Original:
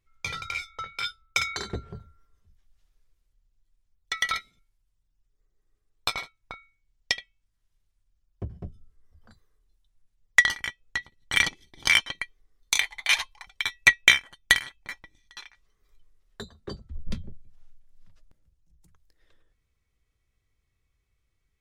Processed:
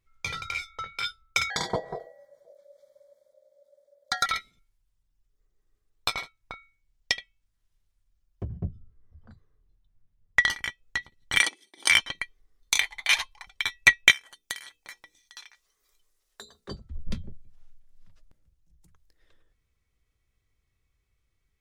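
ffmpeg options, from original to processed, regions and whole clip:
-filter_complex "[0:a]asettb=1/sr,asplit=3[s0][s1][s2];[s0]atrim=end=1.504[s3];[s1]atrim=start=1.5:end=4.26,asetpts=PTS-STARTPTS,afade=t=in:d=0.004:c=qsin,afade=t=out:st=2.756:d=0.004:c=qsin,acontrast=89,aeval=exprs='val(0)*sin(2*PI*570*n/s)':c=same,asuperstop=centerf=2700:order=20:qfactor=3.4[s4];[s2]atrim=start=4.256[s5];[s3][s4]acrossfade=d=0.004:c1=hsin:c2=qsin[s6];[s6][s5]acrossfade=d=0.004:c1=qsin:c2=hsin,asettb=1/sr,asplit=3[s7][s8][s9];[s7]atrim=end=8.484[s10];[s8]atrim=start=8.48:end=10.44,asetpts=PTS-STARTPTS,afade=t=in:d=0.004:c=qsin,afade=t=out:st=1.956:d=0.004:c=qsin,lowpass=f=1700:p=1,equalizer=f=120:t=o:w=2.1:g=8.5[s11];[s9]atrim=start=10.436[s12];[s10][s11]acrossfade=d=0.004:c1=hsin:c2=qsin[s13];[s13][s12]acrossfade=d=0.004:c1=qsin:c2=hsin,asettb=1/sr,asplit=3[s14][s15][s16];[s14]atrim=end=11.394[s17];[s15]atrim=start=11.39:end=11.91,asetpts=PTS-STARTPTS,afade=t=in:d=0.004:c=qsin,afade=t=out:st=0.516:d=0.004:c=qsin,highpass=f=290:w=0.5412,highpass=f=290:w=1.3066,equalizer=f=8900:w=5.4:g=14.5[s18];[s16]atrim=start=11.906[s19];[s17][s18]acrossfade=d=0.004:c1=hsin:c2=qsin[s20];[s20][s19]acrossfade=d=0.004:c1=qsin:c2=hsin,asettb=1/sr,asplit=3[s21][s22][s23];[s21]atrim=end=14.114[s24];[s22]atrim=start=14.11:end=16.69,asetpts=PTS-STARTPTS,afade=t=in:d=0.004:c=qsin,afade=t=out:st=2.576:d=0.004:c=qsin,bass=f=250:g=-15,treble=f=4000:g=10,bandreject=f=60:t=h:w=6,bandreject=f=120:t=h:w=6,bandreject=f=180:t=h:w=6,bandreject=f=240:t=h:w=6,bandreject=f=300:t=h:w=6,bandreject=f=360:t=h:w=6,bandreject=f=420:t=h:w=6,bandreject=f=480:t=h:w=6,acompressor=threshold=0.00562:ratio=2:attack=3.2:release=140:knee=1:detection=peak[s25];[s23]atrim=start=16.686[s26];[s24][s25]acrossfade=d=0.004:c1=hsin:c2=qsin[s27];[s27][s26]acrossfade=d=0.004:c1=qsin:c2=hsin"

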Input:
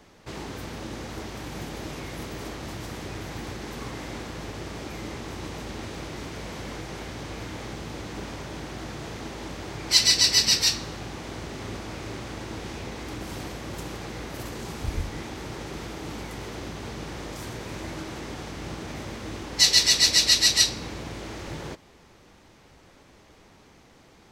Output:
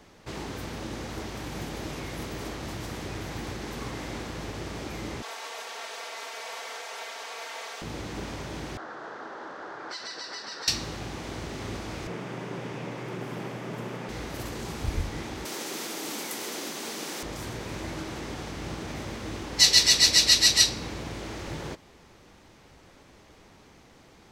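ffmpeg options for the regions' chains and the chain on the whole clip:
-filter_complex "[0:a]asettb=1/sr,asplit=3[s0][s1][s2];[s0]atrim=end=5.224[s3];[s1]atrim=start=5.22:end=7.82,asetpts=PTS-STARTPTS,afade=t=in:d=0.004:c=qsin,afade=t=out:st=2.596:d=0.004:c=qsin,highpass=f=570:w=0.5412,highpass=f=570:w=1.3066,aecho=1:1:4.4:0.93,atrim=end_sample=114660[s4];[s2]atrim=start=7.816[s5];[s3][s4]acrossfade=d=0.004:c1=hsin:c2=qsin[s6];[s6][s5]acrossfade=d=0.004:c1=qsin:c2=hsin,asettb=1/sr,asplit=3[s7][s8][s9];[s7]atrim=end=8.774[s10];[s8]atrim=start=8.77:end=10.68,asetpts=PTS-STARTPTS,afade=t=in:d=0.004:c=qsin,afade=t=out:st=1.906:d=0.004:c=qsin,highshelf=f=1900:t=q:w=3:g=-7,acompressor=threshold=0.0316:ratio=10:attack=3.2:release=140:knee=1:detection=peak,highpass=460,lowpass=4200[s11];[s9]atrim=start=10.676[s12];[s10][s11]acrossfade=d=0.004:c1=hsin:c2=qsin[s13];[s13][s12]acrossfade=d=0.004:c1=qsin:c2=hsin,asettb=1/sr,asplit=3[s14][s15][s16];[s14]atrim=end=12.074[s17];[s15]atrim=start=12.07:end=14.09,asetpts=PTS-STARTPTS,afade=t=in:d=0.004:c=qsin,afade=t=out:st=2.016:d=0.004:c=qsin,equalizer=f=4000:w=6.3:g=-5,afreqshift=66,acrossover=split=3200[s18][s19];[s19]acompressor=threshold=0.00178:ratio=4:attack=1:release=60[s20];[s18][s20]amix=inputs=2:normalize=0[s21];[s16]atrim=start=14.086[s22];[s17][s21]acrossfade=d=0.004:c1=hsin:c2=qsin[s23];[s23][s22]acrossfade=d=0.004:c1=qsin:c2=hsin,asettb=1/sr,asplit=3[s24][s25][s26];[s24]atrim=end=15.454[s27];[s25]atrim=start=15.45:end=17.23,asetpts=PTS-STARTPTS,afade=t=in:d=0.004:c=qsin,afade=t=out:st=1.776:d=0.004:c=qsin,highpass=f=220:w=0.5412,highpass=f=220:w=1.3066,aemphasis=mode=production:type=75kf[s28];[s26]atrim=start=17.226[s29];[s27][s28]acrossfade=d=0.004:c1=hsin:c2=qsin[s30];[s30][s29]acrossfade=d=0.004:c1=qsin:c2=hsin"

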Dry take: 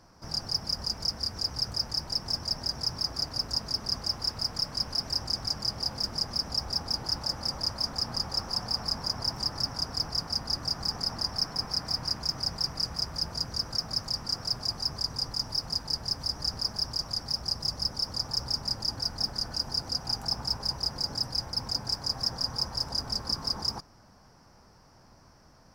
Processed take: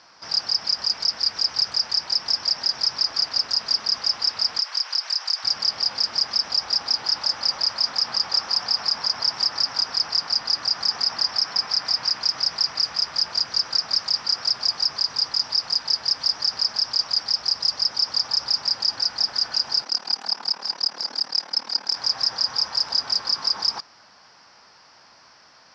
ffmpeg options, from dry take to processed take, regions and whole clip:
-filter_complex "[0:a]asettb=1/sr,asplit=3[s0][s1][s2];[s0]atrim=end=4.594[s3];[s1]atrim=start=4.59:end=5.44,asetpts=PTS-STARTPTS,afade=t=in:d=0.004:c=qsin,afade=t=out:st=0.846:d=0.004:c=qsin,highpass=810,acompressor=threshold=0.0355:ratio=5:attack=3.2:release=140:knee=1:detection=peak[s4];[s2]atrim=start=5.436[s5];[s3][s4]acrossfade=d=0.004:c1=hsin:c2=qsin[s6];[s6][s5]acrossfade=d=0.004:c1=qsin:c2=hsin,asettb=1/sr,asplit=3[s7][s8][s9];[s7]atrim=end=19.844[s10];[s8]atrim=start=19.84:end=21.96,asetpts=PTS-STARTPTS,afade=t=in:d=0.004:c=qsin,afade=t=out:st=2.116:d=0.004:c=qsin,lowshelf=f=320:g=7.5,tremolo=f=37:d=0.889,highpass=f=210:w=0.5412,highpass=f=210:w=1.3066[s11];[s9]atrim=start=21.956[s12];[s10][s11]acrossfade=d=0.004:c1=hsin:c2=qsin[s13];[s13][s12]acrossfade=d=0.004:c1=qsin:c2=hsin,lowpass=f=4000:w=0.5412,lowpass=f=4000:w=1.3066,aderivative,alimiter=level_in=44.7:limit=0.891:release=50:level=0:latency=1,volume=0.355"

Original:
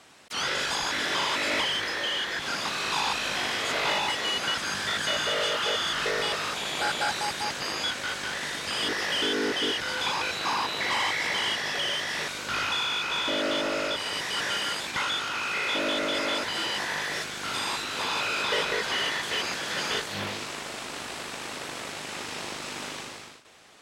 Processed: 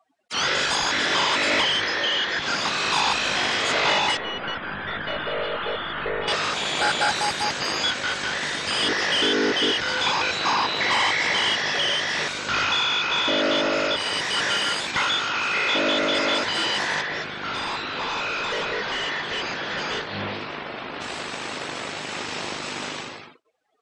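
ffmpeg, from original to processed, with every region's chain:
-filter_complex "[0:a]asettb=1/sr,asplit=3[s0][s1][s2];[s0]atrim=end=4.174[s3];[s1]atrim=start=4.17:end=6.28,asetpts=PTS-STARTPTS,afade=t=in:d=0.004:c=qsin,afade=t=out:st=2.106:d=0.004:c=qsin,lowpass=3200,highshelf=f=2200:g=-7,aeval=exprs='(tanh(17.8*val(0)+0.5)-tanh(0.5))/17.8':c=same[s4];[s2]atrim=start=6.276[s5];[s3][s4]acrossfade=d=0.004:c1=hsin:c2=qsin[s6];[s6][s5]acrossfade=d=0.004:c1=qsin:c2=hsin,asettb=1/sr,asplit=3[s7][s8][s9];[s7]atrim=end=17.014[s10];[s8]atrim=start=17.01:end=21.01,asetpts=PTS-STARTPTS,afade=t=in:d=0.004:c=qsin,afade=t=out:st=3.996:d=0.004:c=qsin,aemphasis=mode=reproduction:type=50kf,volume=31.6,asoftclip=hard,volume=0.0316[s11];[s9]atrim=start=21.006[s12];[s10][s11]acrossfade=d=0.004:c1=hsin:c2=qsin[s13];[s13][s12]acrossfade=d=0.004:c1=qsin:c2=hsin,afftdn=nr=34:nf=-45,acontrast=47"

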